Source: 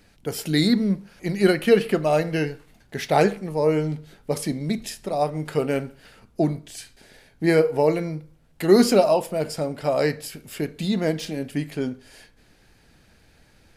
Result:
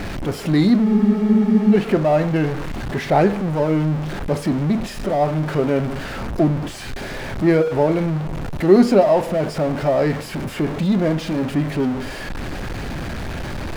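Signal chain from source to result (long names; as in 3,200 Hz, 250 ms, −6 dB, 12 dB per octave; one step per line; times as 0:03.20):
converter with a step at zero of −22 dBFS
low-pass filter 1,200 Hz 6 dB per octave
notch filter 460 Hz, Q 12
frozen spectrum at 0:00.86, 0.87 s
level +3 dB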